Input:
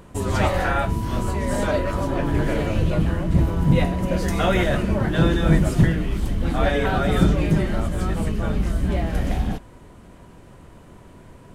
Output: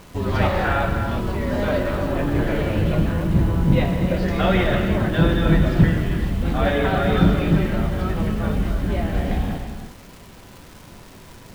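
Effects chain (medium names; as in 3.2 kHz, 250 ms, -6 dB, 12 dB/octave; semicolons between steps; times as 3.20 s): low-pass 4.5 kHz 24 dB/octave; crackle 280 per s -36 dBFS; word length cut 8-bit, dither none; gated-style reverb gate 380 ms flat, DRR 4.5 dB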